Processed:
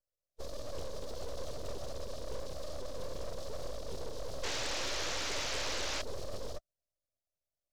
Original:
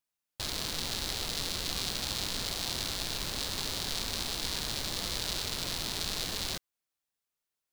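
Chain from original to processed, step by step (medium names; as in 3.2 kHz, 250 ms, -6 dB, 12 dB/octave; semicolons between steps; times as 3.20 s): Chebyshev band-stop 310–5600 Hz, order 3; ring modulator 100 Hz; in parallel at -3 dB: peak limiter -29 dBFS, peak gain reduction 8 dB; on the sum: formant-preserving pitch shift -6.5 st; three-band isolator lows -19 dB, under 160 Hz, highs -22 dB, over 3.3 kHz; full-wave rectifier; painted sound noise, 4.43–6.02 s, 260–6600 Hz -45 dBFS; saturation -37 dBFS, distortion -18 dB; loudspeaker Doppler distortion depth 0.57 ms; trim +9 dB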